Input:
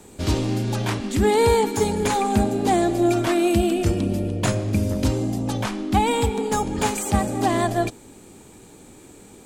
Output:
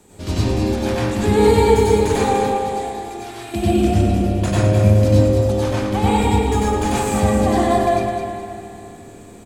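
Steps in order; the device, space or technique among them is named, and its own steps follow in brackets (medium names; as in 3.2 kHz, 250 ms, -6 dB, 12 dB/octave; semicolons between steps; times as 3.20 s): 2.36–3.54 s: amplifier tone stack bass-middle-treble 5-5-5; feedback delay 208 ms, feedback 39%, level -7 dB; spring tank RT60 3 s, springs 38/59 ms, chirp 35 ms, DRR 6.5 dB; bathroom (reverberation RT60 0.65 s, pre-delay 90 ms, DRR -5.5 dB); trim -5 dB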